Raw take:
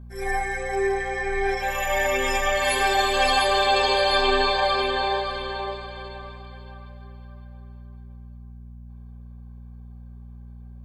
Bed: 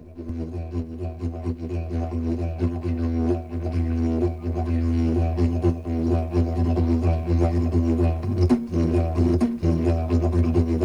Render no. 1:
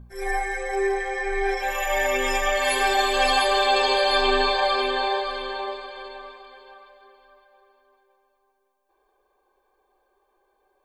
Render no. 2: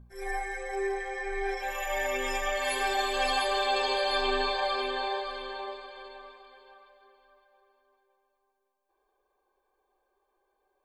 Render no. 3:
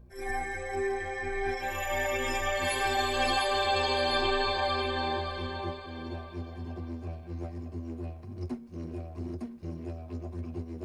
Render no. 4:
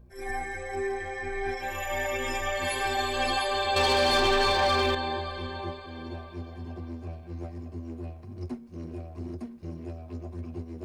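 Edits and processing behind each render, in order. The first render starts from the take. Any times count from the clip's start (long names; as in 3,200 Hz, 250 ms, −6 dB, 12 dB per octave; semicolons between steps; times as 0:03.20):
hum removal 60 Hz, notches 4
level −7.5 dB
mix in bed −17.5 dB
0:03.76–0:04.95: leveller curve on the samples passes 2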